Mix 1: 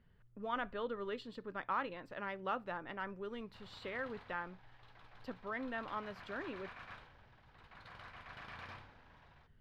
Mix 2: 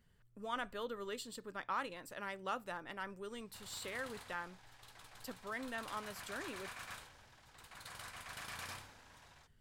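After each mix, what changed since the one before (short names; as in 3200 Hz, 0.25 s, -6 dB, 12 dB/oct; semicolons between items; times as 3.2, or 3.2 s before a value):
speech -3.5 dB; master: remove air absorption 310 m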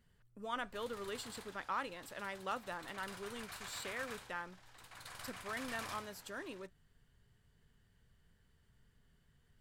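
background: entry -2.80 s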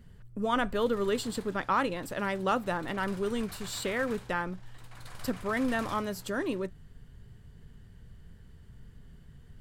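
speech +9.0 dB; master: add low shelf 490 Hz +11 dB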